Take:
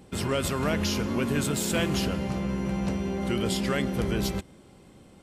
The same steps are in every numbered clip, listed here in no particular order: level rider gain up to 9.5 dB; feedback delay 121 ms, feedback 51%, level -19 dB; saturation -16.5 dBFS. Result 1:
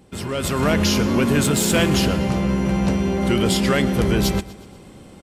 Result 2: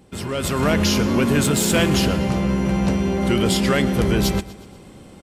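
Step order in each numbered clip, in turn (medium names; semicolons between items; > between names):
saturation > feedback delay > level rider; feedback delay > saturation > level rider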